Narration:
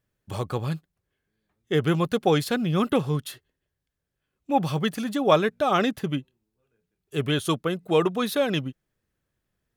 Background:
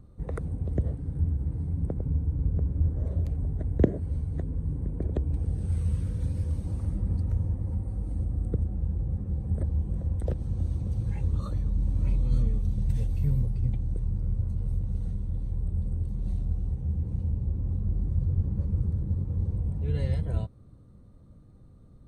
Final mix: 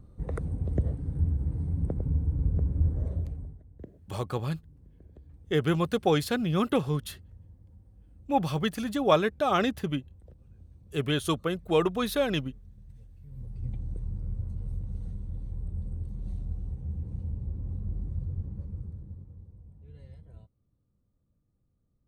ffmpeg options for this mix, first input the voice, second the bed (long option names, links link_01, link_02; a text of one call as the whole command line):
ffmpeg -i stem1.wav -i stem2.wav -filter_complex "[0:a]adelay=3800,volume=-3dB[link_01];[1:a]volume=18dB,afade=type=out:start_time=2.95:duration=0.66:silence=0.0668344,afade=type=in:start_time=13.29:duration=0.5:silence=0.125893,afade=type=out:start_time=17.95:duration=1.51:silence=0.158489[link_02];[link_01][link_02]amix=inputs=2:normalize=0" out.wav